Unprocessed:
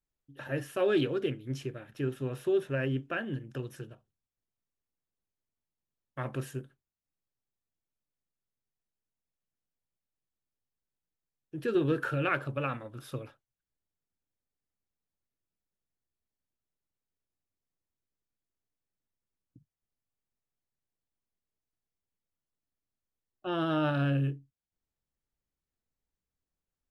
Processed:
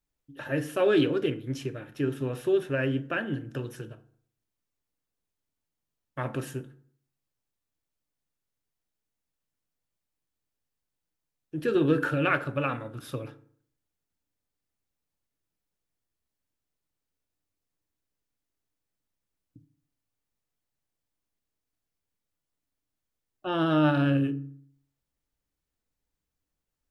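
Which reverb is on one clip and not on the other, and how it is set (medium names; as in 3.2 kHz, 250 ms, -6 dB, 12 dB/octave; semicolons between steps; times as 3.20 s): FDN reverb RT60 0.58 s, low-frequency decay 1.1×, high-frequency decay 0.6×, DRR 10.5 dB; trim +4 dB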